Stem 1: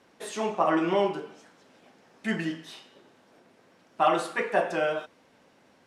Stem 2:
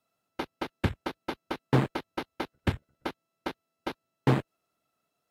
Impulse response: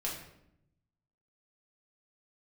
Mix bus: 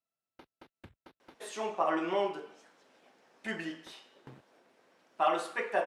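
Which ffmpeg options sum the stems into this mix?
-filter_complex "[0:a]bass=f=250:g=-11,treble=f=4000:g=-1,adelay=1200,volume=0.562[s0];[1:a]acompressor=threshold=0.0141:ratio=2.5,volume=0.141,asplit=3[s1][s2][s3];[s1]atrim=end=1.37,asetpts=PTS-STARTPTS,afade=t=out:st=1.366:d=0.004:c=hsin[s4];[s2]atrim=start=1.37:end=3.37,asetpts=PTS-STARTPTS,volume=0[s5];[s3]atrim=start=3.37,asetpts=PTS-STARTPTS,afade=t=in:d=0.004:c=hsin[s6];[s4][s5][s6]concat=n=3:v=0:a=1[s7];[s0][s7]amix=inputs=2:normalize=0"

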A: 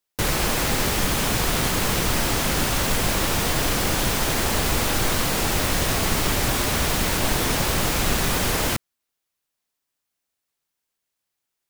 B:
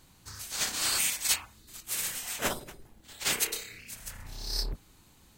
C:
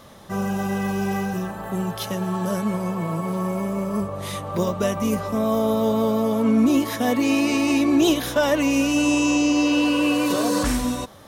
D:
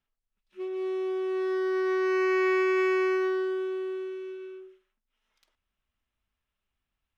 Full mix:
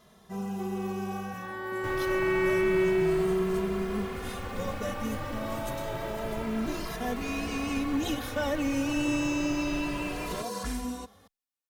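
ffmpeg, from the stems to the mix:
-filter_complex "[0:a]acrossover=split=2800[s0][s1];[s1]acompressor=threshold=0.00708:ratio=4:attack=1:release=60[s2];[s0][s2]amix=inputs=2:normalize=0,adelay=1650,volume=0.282[s3];[1:a]adelay=2250,volume=0.251,afade=t=in:st=5.55:d=0.22:silence=0.281838[s4];[2:a]volume=0.376[s5];[3:a]lowpass=3400,volume=1.06[s6];[s3][s4][s5][s6]amix=inputs=4:normalize=0,asplit=2[s7][s8];[s8]adelay=2.5,afreqshift=0.29[s9];[s7][s9]amix=inputs=2:normalize=1"

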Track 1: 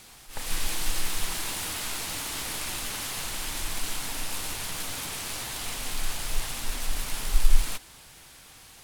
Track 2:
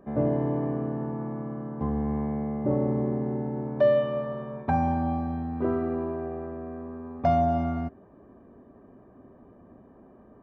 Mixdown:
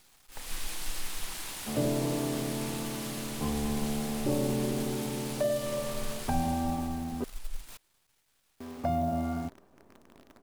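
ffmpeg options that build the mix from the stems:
-filter_complex "[0:a]volume=0.422,afade=t=out:st=6.26:d=0.73:silence=0.266073[s0];[1:a]flanger=delay=2.5:depth=6.8:regen=-71:speed=1.5:shape=sinusoidal,adelay=1600,volume=1.19,asplit=3[s1][s2][s3];[s1]atrim=end=7.24,asetpts=PTS-STARTPTS,afade=t=out:st=7.236:d=0.004:c=hsin[s4];[s2]atrim=start=7.24:end=8.6,asetpts=PTS-STARTPTS,volume=0[s5];[s3]atrim=start=8.6,asetpts=PTS-STARTPTS,afade=t=in:d=0.004:c=hsin[s6];[s4][s5][s6]concat=n=3:v=0:a=1[s7];[s0][s7]amix=inputs=2:normalize=0,equalizer=f=88:w=0.71:g=-2.5,acrossover=split=440|3000[s8][s9][s10];[s9]acompressor=threshold=0.0251:ratio=6[s11];[s8][s11][s10]amix=inputs=3:normalize=0,acrusher=bits=9:dc=4:mix=0:aa=0.000001"

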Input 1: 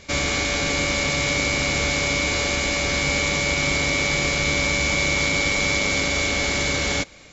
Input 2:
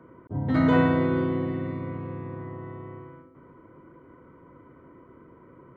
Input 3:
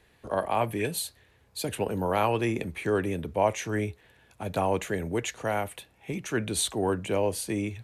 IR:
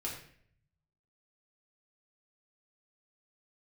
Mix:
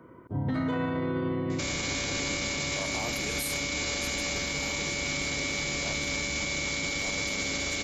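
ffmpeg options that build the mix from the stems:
-filter_complex "[0:a]equalizer=f=250:w=1.3:g=4.5,adelay=1500,volume=0.562[s0];[1:a]volume=0.891,asplit=2[s1][s2];[s2]volume=0.0944[s3];[2:a]highshelf=f=12000:g=11.5,adelay=2450,volume=0.531,afade=t=out:st=3.47:d=0.36:silence=0.281838,asplit=2[s4][s5];[s5]volume=0.422[s6];[3:a]atrim=start_sample=2205[s7];[s3][s6]amix=inputs=2:normalize=0[s8];[s8][s7]afir=irnorm=-1:irlink=0[s9];[s0][s1][s4][s9]amix=inputs=4:normalize=0,highshelf=f=3500:g=7.5,alimiter=limit=0.0794:level=0:latency=1"

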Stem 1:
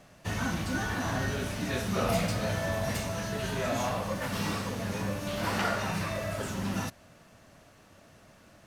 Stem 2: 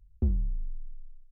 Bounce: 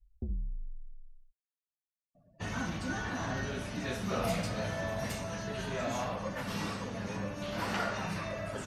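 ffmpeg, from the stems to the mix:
-filter_complex "[0:a]adelay=2150,volume=0.631[s0];[1:a]flanger=delay=5.8:depth=1.5:regen=-74:speed=1.8:shape=triangular,volume=0.708[s1];[s0][s1]amix=inputs=2:normalize=0,afftdn=nr=33:nf=-54,equalizer=f=89:w=3.3:g=-4.5"

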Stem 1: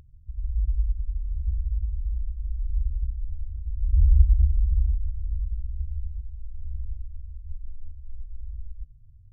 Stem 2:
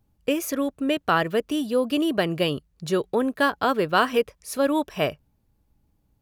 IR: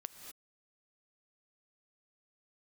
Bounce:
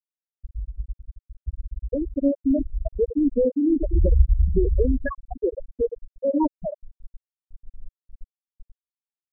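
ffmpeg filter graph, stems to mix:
-filter_complex "[0:a]acrusher=bits=4:mix=0:aa=0.000001,volume=0.562,asplit=2[s0][s1];[s1]volume=0.211[s2];[1:a]alimiter=limit=0.133:level=0:latency=1:release=213,adelay=1650,volume=1.19,asplit=2[s3][s4];[s4]volume=0.422[s5];[s2][s5]amix=inputs=2:normalize=0,aecho=0:1:87|174|261|348:1|0.31|0.0961|0.0298[s6];[s0][s3][s6]amix=inputs=3:normalize=0,afftfilt=real='re*gte(hypot(re,im),0.447)':imag='im*gte(hypot(re,im),0.447)':win_size=1024:overlap=0.75,dynaudnorm=f=290:g=9:m=1.78"

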